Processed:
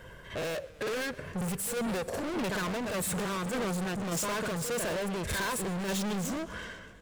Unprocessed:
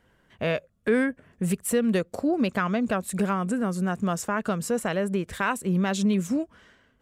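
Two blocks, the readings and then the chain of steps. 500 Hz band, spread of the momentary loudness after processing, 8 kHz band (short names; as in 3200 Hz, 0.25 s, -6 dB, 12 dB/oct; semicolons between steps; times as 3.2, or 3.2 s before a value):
-6.0 dB, 5 LU, +0.5 dB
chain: comb 1.9 ms, depth 53%; in parallel at +2 dB: compressor, threshold -31 dBFS, peak gain reduction 13.5 dB; on the sum: soft clip -22.5 dBFS, distortion -10 dB; on a send: reverse echo 57 ms -7.5 dB; on the sum: overloaded stage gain 35.5 dB; tremolo saw down 1.7 Hz, depth 35%; warbling echo 0.125 s, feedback 74%, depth 179 cents, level -20 dB; gain +5.5 dB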